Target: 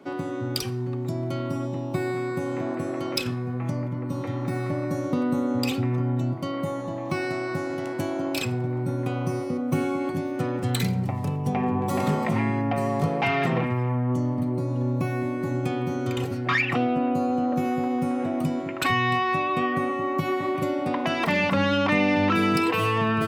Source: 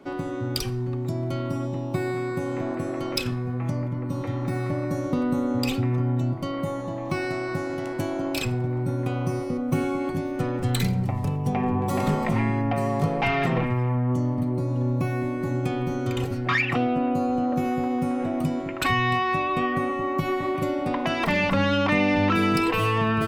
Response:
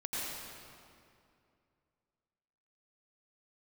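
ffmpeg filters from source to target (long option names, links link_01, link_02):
-af "highpass=100"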